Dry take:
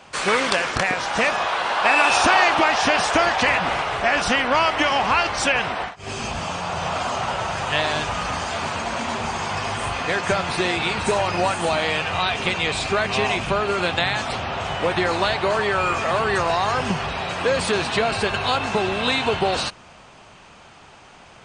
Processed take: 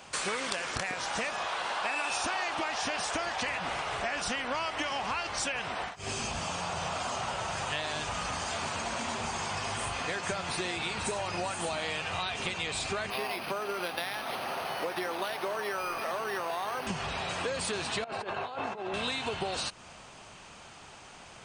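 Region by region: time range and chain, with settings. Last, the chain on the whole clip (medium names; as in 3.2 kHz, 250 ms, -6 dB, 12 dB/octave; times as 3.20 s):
13.10–16.87 s: high-pass 260 Hz + decimation joined by straight lines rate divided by 6×
18.04–18.94 s: compressor with a negative ratio -25 dBFS, ratio -0.5 + band-pass filter 610 Hz, Q 0.68
whole clip: treble shelf 6.2 kHz +11.5 dB; compression 4:1, threshold -27 dBFS; trim -4.5 dB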